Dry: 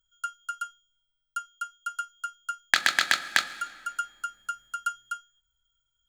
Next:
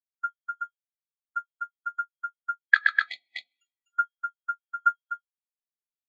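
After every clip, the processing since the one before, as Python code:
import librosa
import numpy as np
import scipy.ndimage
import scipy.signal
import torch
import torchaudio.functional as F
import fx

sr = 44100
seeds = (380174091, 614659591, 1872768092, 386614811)

y = fx.spec_box(x, sr, start_s=3.09, length_s=0.84, low_hz=830.0, high_hz=1900.0, gain_db=-23)
y = fx.high_shelf(y, sr, hz=7100.0, db=-5.5)
y = fx.spectral_expand(y, sr, expansion=2.5)
y = y * librosa.db_to_amplitude(1.0)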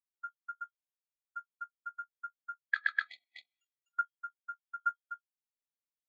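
y = fx.level_steps(x, sr, step_db=11)
y = y * librosa.db_to_amplitude(-5.5)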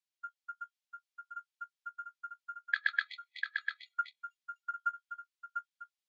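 y = fx.bandpass_q(x, sr, hz=3700.0, q=0.9)
y = y + 10.0 ** (-5.0 / 20.0) * np.pad(y, (int(697 * sr / 1000.0), 0))[:len(y)]
y = y * librosa.db_to_amplitude(5.5)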